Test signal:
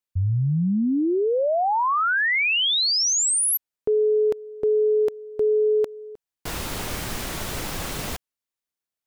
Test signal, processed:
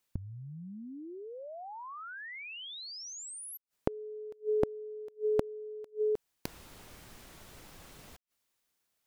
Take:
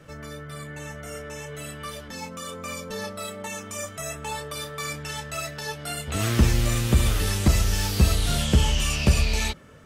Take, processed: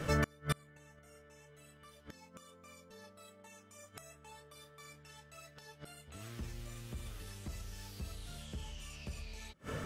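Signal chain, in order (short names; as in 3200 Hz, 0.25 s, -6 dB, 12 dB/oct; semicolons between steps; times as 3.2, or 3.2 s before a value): in parallel at +0.5 dB: limiter -17 dBFS; on the sum: flipped gate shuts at -23 dBFS, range -32 dB; gain +3 dB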